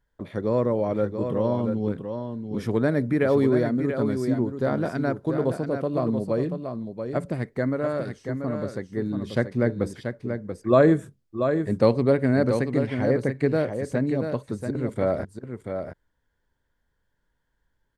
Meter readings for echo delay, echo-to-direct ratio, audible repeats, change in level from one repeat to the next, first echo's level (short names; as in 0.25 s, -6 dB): 0.684 s, -7.0 dB, 1, no steady repeat, -7.0 dB